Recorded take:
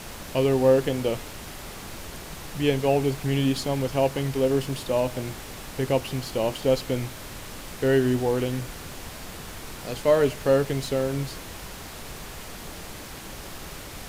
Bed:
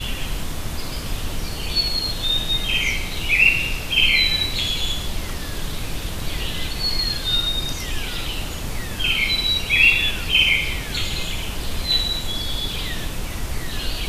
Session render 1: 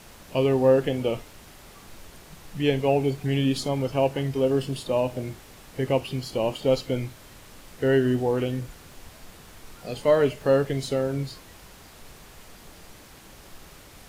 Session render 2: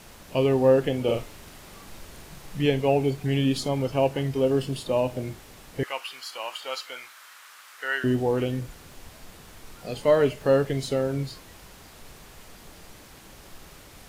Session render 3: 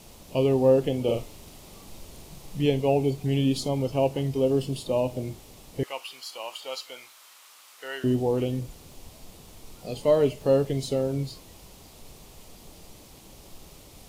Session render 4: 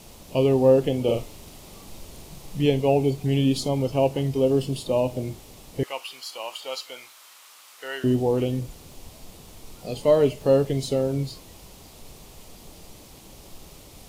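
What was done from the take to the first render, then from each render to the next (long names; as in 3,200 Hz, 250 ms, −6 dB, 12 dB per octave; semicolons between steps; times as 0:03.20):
noise reduction from a noise print 9 dB
0:01.04–0:02.66: double-tracking delay 42 ms −3 dB; 0:05.83–0:08.04: high-pass with resonance 1,300 Hz, resonance Q 2.2
parametric band 1,600 Hz −12.5 dB 0.9 octaves
level +2.5 dB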